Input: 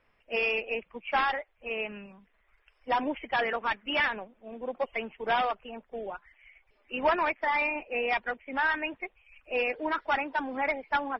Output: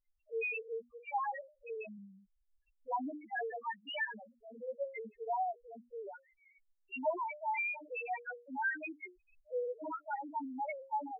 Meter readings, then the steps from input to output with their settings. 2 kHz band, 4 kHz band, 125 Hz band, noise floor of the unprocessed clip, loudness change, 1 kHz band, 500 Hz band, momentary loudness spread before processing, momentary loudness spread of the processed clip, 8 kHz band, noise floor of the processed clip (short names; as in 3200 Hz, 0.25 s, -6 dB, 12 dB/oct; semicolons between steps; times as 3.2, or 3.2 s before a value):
-10.5 dB, -14.5 dB, under -10 dB, -69 dBFS, -9.5 dB, -8.0 dB, -8.0 dB, 12 LU, 13 LU, n/a, -77 dBFS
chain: notches 60/120/180/240/300/360/420/480/540/600 Hz; loudest bins only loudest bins 1